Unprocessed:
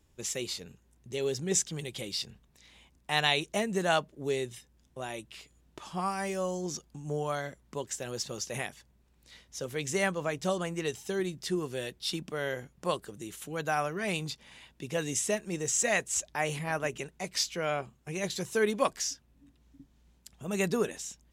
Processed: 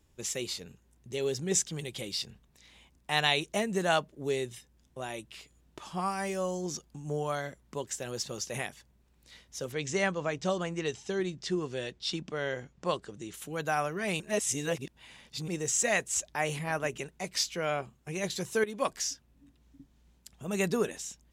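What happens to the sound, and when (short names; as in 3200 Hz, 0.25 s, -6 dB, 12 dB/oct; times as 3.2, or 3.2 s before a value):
9.72–13.34 LPF 7300 Hz 24 dB/oct
14.2–15.48 reverse
18.64–19.07 fade in equal-power, from -15 dB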